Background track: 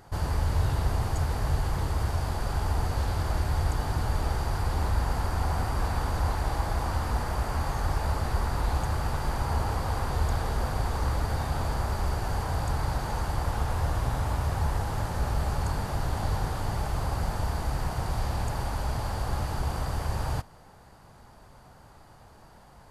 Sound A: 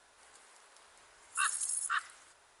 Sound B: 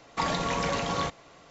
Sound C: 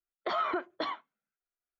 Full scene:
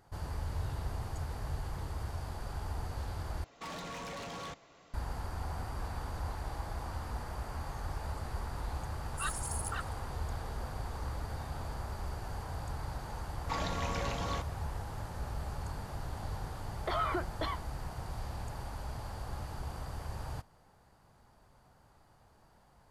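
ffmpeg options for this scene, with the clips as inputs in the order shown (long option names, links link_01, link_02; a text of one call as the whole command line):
ffmpeg -i bed.wav -i cue0.wav -i cue1.wav -i cue2.wav -filter_complex "[2:a]asplit=2[link_01][link_02];[0:a]volume=-11dB[link_03];[link_01]asoftclip=type=tanh:threshold=-33dB[link_04];[1:a]aphaser=in_gain=1:out_gain=1:delay=4:decay=0.68:speed=1.1:type=triangular[link_05];[link_03]asplit=2[link_06][link_07];[link_06]atrim=end=3.444[link_08];[link_04]atrim=end=1.5,asetpts=PTS-STARTPTS,volume=-7dB[link_09];[link_07]atrim=start=4.936[link_10];[link_05]atrim=end=2.6,asetpts=PTS-STARTPTS,volume=-8dB,afade=type=in:duration=0.004:curve=hsin,afade=type=out:start_time=2.596:duration=0.004:curve=hsin,adelay=7820[link_11];[link_02]atrim=end=1.5,asetpts=PTS-STARTPTS,volume=-8.5dB,afade=type=in:duration=0.004:curve=hsin,afade=type=out:start_time=1.496:duration=0.004:curve=hsin,adelay=587412S[link_12];[3:a]atrim=end=1.79,asetpts=PTS-STARTPTS,volume=-2.5dB,afade=type=in:duration=0.004:curve=hsin,afade=type=out:start_time=1.786:duration=0.004:curve=hsin,adelay=16610[link_13];[link_08][link_09]acrossfade=duration=0.004:curve1=hsin:curve2=hsin[link_14];[link_14][link_10]acrossfade=duration=0.004:curve1=hsin:curve2=hsin[link_15];[link_15][link_11][link_12][link_13]amix=inputs=4:normalize=0" out.wav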